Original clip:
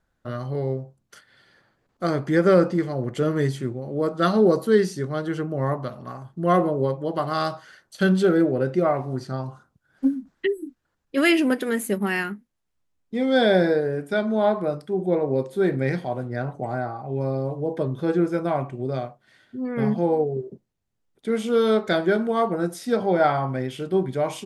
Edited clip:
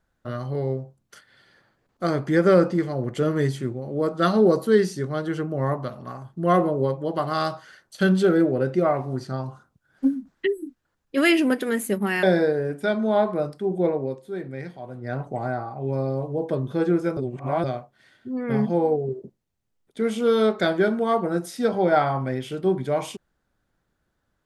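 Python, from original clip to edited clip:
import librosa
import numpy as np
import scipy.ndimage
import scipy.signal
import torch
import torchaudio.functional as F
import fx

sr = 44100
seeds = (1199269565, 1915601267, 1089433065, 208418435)

y = fx.edit(x, sr, fx.cut(start_s=12.23, length_s=1.28),
    fx.fade_down_up(start_s=15.18, length_s=1.27, db=-10.5, fade_s=0.41, curve='qua'),
    fx.reverse_span(start_s=18.45, length_s=0.47), tone=tone)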